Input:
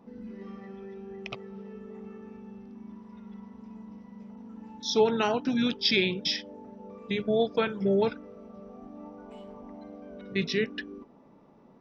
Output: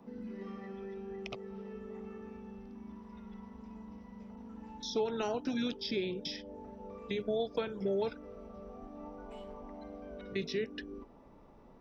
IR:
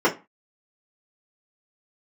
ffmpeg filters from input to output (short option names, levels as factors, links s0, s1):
-filter_complex "[0:a]asubboost=boost=7.5:cutoff=63,acrossover=split=190|740|5300[s0][s1][s2][s3];[s0]acompressor=threshold=0.00251:ratio=4[s4];[s1]acompressor=threshold=0.0251:ratio=4[s5];[s2]acompressor=threshold=0.00562:ratio=4[s6];[s3]acompressor=threshold=0.00355:ratio=4[s7];[s4][s5][s6][s7]amix=inputs=4:normalize=0"